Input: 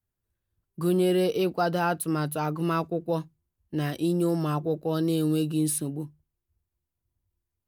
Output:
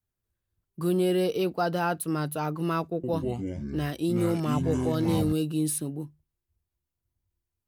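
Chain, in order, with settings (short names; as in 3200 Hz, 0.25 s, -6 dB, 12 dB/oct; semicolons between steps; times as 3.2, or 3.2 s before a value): 2.94–5.33 echoes that change speed 95 ms, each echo -5 st, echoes 3; gain -1.5 dB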